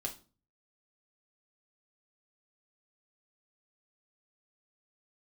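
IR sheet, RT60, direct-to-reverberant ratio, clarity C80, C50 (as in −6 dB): 0.35 s, 0.0 dB, 19.5 dB, 14.0 dB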